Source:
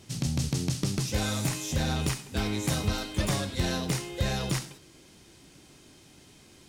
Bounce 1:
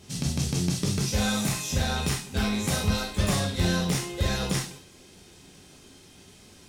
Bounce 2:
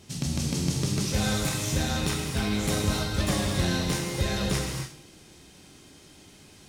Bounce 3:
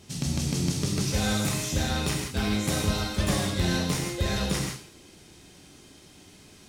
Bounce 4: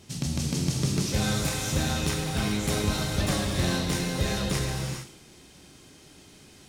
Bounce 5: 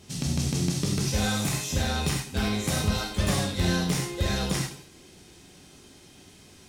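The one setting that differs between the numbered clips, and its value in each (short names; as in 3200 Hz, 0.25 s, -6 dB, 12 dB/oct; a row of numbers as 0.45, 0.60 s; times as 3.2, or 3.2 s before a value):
non-linear reverb, gate: 80, 310, 190, 470, 120 ms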